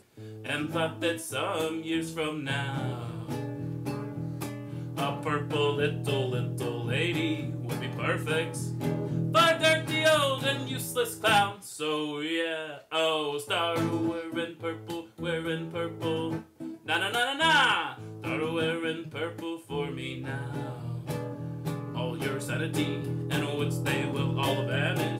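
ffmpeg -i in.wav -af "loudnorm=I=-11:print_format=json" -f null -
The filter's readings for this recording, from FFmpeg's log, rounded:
"input_i" : "-29.4",
"input_tp" : "-12.4",
"input_lra" : "7.3",
"input_thresh" : "-39.5",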